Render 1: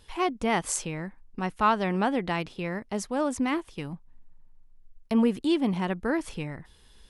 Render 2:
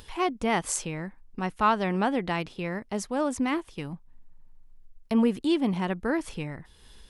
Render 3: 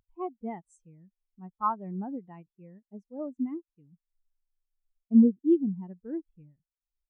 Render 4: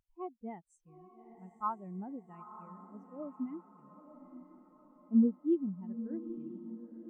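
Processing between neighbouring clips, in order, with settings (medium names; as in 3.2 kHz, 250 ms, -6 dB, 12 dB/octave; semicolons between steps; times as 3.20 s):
upward compressor, threshold -43 dBFS
spectral contrast expander 2.5:1
echo that smears into a reverb 909 ms, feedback 50%, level -12 dB; trim -7 dB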